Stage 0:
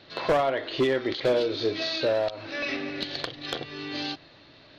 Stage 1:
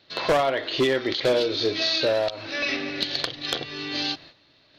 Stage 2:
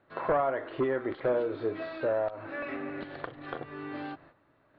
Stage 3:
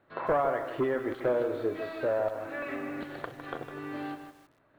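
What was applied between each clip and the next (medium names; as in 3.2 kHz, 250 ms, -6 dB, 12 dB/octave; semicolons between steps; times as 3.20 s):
gate -50 dBFS, range -11 dB; treble shelf 3 kHz +8.5 dB; trim +1.5 dB
in parallel at -3 dB: compression, threshold -31 dBFS, peak gain reduction 12.5 dB; on the sum: four-pole ladder low-pass 1.7 kHz, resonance 30%; trim -1.5 dB
bit-crushed delay 156 ms, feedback 35%, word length 9-bit, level -9 dB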